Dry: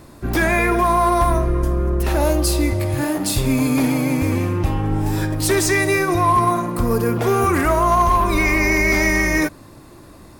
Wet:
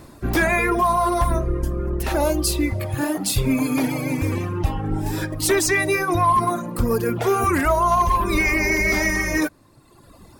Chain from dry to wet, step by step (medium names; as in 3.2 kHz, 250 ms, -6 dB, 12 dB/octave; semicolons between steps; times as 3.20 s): reverb removal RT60 1.4 s